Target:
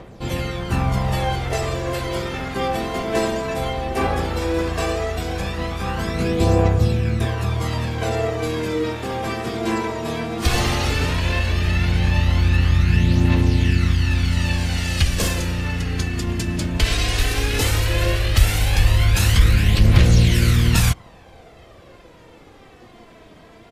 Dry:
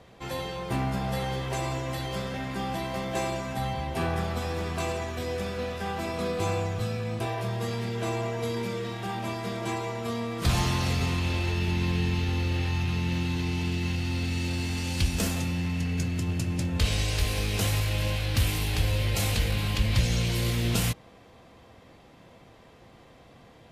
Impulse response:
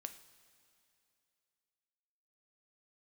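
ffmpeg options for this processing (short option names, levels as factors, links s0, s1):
-filter_complex "[0:a]aphaser=in_gain=1:out_gain=1:delay=3.2:decay=0.58:speed=0.15:type=triangular,acontrast=33,asplit=2[s0][s1];[s1]asetrate=29433,aresample=44100,atempo=1.49831,volume=0.794[s2];[s0][s2]amix=inputs=2:normalize=0,volume=0.891"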